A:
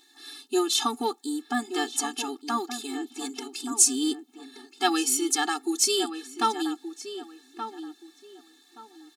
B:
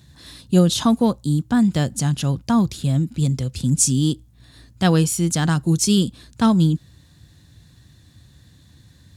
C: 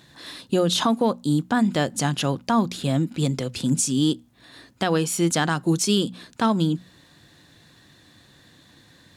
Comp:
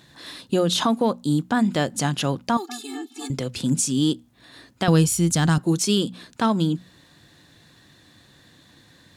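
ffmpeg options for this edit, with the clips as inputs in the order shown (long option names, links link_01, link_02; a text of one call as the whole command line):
ffmpeg -i take0.wav -i take1.wav -i take2.wav -filter_complex "[2:a]asplit=3[link_01][link_02][link_03];[link_01]atrim=end=2.572[link_04];[0:a]atrim=start=2.568:end=3.302[link_05];[link_02]atrim=start=3.298:end=4.882[link_06];[1:a]atrim=start=4.878:end=5.582[link_07];[link_03]atrim=start=5.578[link_08];[link_04][link_05]acrossfade=duration=0.004:curve1=hsin:curve2=hsin[link_09];[link_09][link_06]acrossfade=duration=0.004:curve1=hsin:curve2=hsin[link_10];[link_10][link_07]acrossfade=duration=0.004:curve1=hsin:curve2=hsin[link_11];[link_11][link_08]acrossfade=duration=0.004:curve1=hsin:curve2=hsin" out.wav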